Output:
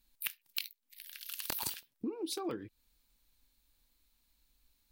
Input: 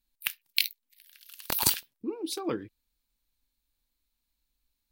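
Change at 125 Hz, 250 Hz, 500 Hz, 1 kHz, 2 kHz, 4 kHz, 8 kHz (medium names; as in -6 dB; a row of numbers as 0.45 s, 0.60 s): -9.5 dB, -5.0 dB, -5.5 dB, -7.0 dB, -10.0 dB, -10.5 dB, -10.0 dB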